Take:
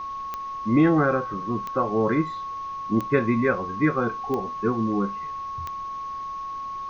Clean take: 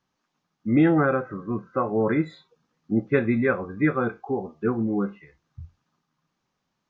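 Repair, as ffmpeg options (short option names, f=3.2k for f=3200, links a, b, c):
-af "adeclick=t=4,bandreject=f=1.1k:w=30,agate=range=-21dB:threshold=-25dB"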